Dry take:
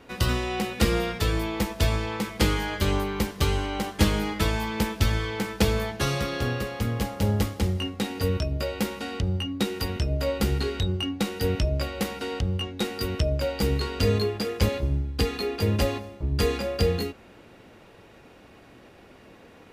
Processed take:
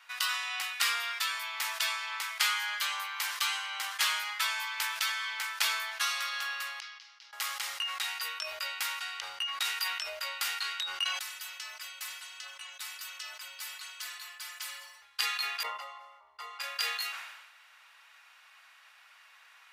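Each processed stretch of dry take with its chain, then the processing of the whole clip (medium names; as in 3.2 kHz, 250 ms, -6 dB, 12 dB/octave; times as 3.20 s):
6.80–7.33 s: band-pass filter 5.5 kHz, Q 2.9 + distance through air 260 m
11.04–15.02 s: inharmonic resonator 130 Hz, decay 0.5 s, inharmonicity 0.008 + phaser 1.4 Hz, delay 3.3 ms, feedback 26% + spectrum-flattening compressor 2:1
15.63–16.60 s: Savitzky-Golay filter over 65 samples + tilt EQ +2 dB/octave
whole clip: inverse Chebyshev high-pass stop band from 330 Hz, stop band 60 dB; decay stretcher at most 49 dB/s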